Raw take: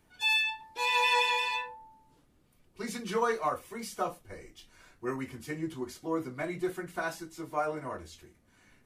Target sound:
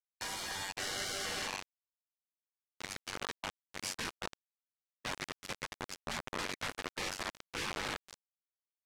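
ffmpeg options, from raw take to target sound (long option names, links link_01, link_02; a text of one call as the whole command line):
ffmpeg -i in.wav -filter_complex "[0:a]tremolo=f=95:d=0.71,asuperstop=centerf=3500:order=4:qfactor=3.6,equalizer=frequency=170:width_type=o:width=0.44:gain=-8,asettb=1/sr,asplit=3[link_01][link_02][link_03];[link_01]atrim=end=1.254[link_04];[link_02]atrim=start=1.25:end=3.73,asetpts=PTS-STARTPTS,afade=type=in:duration=0.004:curve=qsin,afade=type=out:start_time=2.476:duration=0.004:curve=qsin,acrossover=split=230|900[link_05][link_06][link_07];[link_05]acompressor=threshold=-50dB:ratio=4[link_08];[link_06]acompressor=threshold=-49dB:ratio=4[link_09];[link_07]acompressor=threshold=-47dB:ratio=4[link_10];[link_08][link_09][link_10]amix=inputs=3:normalize=0[link_11];[link_03]atrim=start=3.726[link_12];[link_04][link_11]acrossfade=duration=0.004:curve1=hsin:curve2=qsin[link_13];[link_13][link_12]acrossfade=duration=0.004:curve1=qsin:curve2=hsin,tiltshelf=frequency=970:gain=-7.5,asplit=2[link_14][link_15];[link_15]adelay=215.7,volume=-7dB,highshelf=frequency=4000:gain=-4.85[link_16];[link_14][link_16]amix=inputs=2:normalize=0,acrusher=bits=5:mix=0:aa=0.000001,afftfilt=real='re*lt(hypot(re,im),0.0316)':imag='im*lt(hypot(re,im),0.0316)':win_size=1024:overlap=0.75,adynamicsmooth=sensitivity=3:basefreq=6000,volume=5.5dB" out.wav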